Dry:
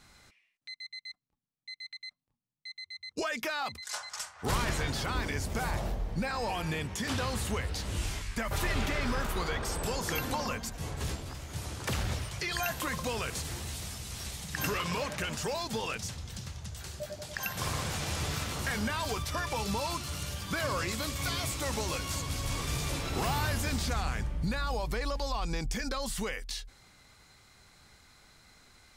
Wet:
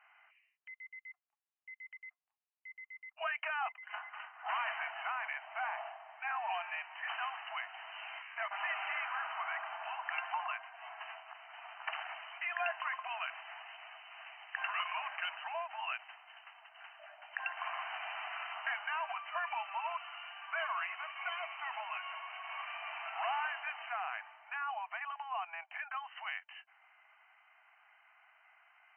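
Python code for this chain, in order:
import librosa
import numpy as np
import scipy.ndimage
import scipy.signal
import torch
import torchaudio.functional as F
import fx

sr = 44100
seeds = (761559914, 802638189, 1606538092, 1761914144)

y = fx.brickwall_bandpass(x, sr, low_hz=630.0, high_hz=3100.0)
y = F.gain(torch.from_numpy(y), -1.5).numpy()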